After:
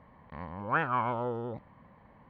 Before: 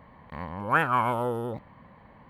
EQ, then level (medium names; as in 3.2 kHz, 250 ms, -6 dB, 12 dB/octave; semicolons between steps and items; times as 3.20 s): steep low-pass 6.5 kHz 48 dB/octave; treble shelf 3.2 kHz -7.5 dB; -4.5 dB